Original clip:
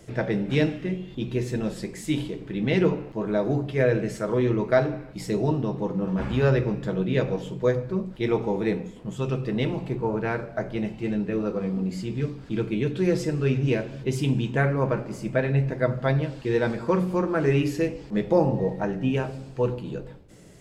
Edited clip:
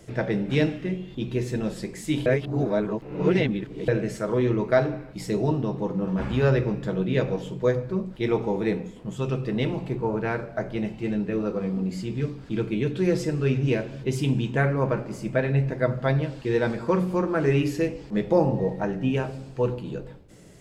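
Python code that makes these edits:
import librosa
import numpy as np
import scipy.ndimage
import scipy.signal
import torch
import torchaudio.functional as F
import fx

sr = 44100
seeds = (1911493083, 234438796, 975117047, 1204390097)

y = fx.edit(x, sr, fx.reverse_span(start_s=2.26, length_s=1.62), tone=tone)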